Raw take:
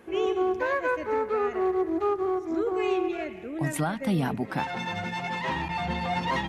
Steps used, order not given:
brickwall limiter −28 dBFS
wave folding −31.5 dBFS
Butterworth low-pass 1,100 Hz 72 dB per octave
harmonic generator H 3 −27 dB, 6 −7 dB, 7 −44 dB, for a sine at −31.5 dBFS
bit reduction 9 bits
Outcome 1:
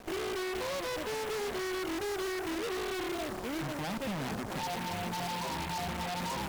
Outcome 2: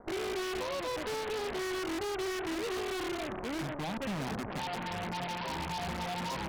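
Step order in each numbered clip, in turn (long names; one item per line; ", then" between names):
Butterworth low-pass, then bit reduction, then brickwall limiter, then wave folding, then harmonic generator
brickwall limiter, then bit reduction, then Butterworth low-pass, then wave folding, then harmonic generator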